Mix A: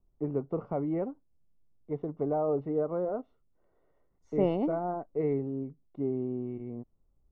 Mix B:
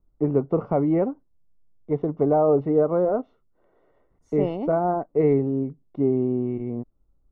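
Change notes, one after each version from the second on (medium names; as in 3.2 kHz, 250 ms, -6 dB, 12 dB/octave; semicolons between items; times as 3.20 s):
first voice +10.0 dB; second voice: remove distance through air 94 m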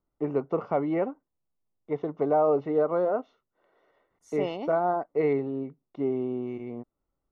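master: add tilt EQ +4 dB/octave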